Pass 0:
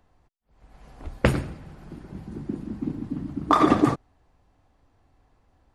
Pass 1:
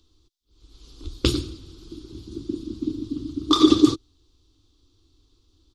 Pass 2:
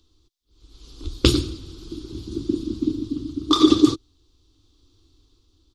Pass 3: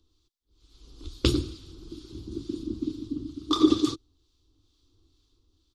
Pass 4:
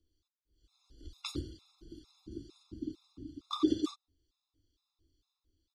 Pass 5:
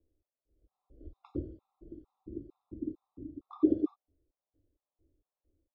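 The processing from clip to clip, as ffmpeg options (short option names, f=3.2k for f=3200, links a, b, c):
-af "firequalizer=gain_entry='entry(100,0);entry(170,-16);entry(320,7);entry(650,-24);entry(1200,-6);entry(1800,-19);entry(3500,15);entry(5600,12);entry(9300,1)':delay=0.05:min_phase=1,volume=1.5dB"
-af "dynaudnorm=f=250:g=7:m=7dB"
-filter_complex "[0:a]acrossover=split=1100[a][b];[a]aeval=exprs='val(0)*(1-0.5/2+0.5/2*cos(2*PI*2.2*n/s))':c=same[c];[b]aeval=exprs='val(0)*(1-0.5/2-0.5/2*cos(2*PI*2.2*n/s))':c=same[d];[c][d]amix=inputs=2:normalize=0,volume=-4.5dB"
-af "afftfilt=real='re*gt(sin(2*PI*2.2*pts/sr)*(1-2*mod(floor(b*sr/1024/690),2)),0)':imag='im*gt(sin(2*PI*2.2*pts/sr)*(1-2*mod(floor(b*sr/1024/690),2)),0)':win_size=1024:overlap=0.75,volume=-8.5dB"
-af "lowpass=f=600:t=q:w=4.9"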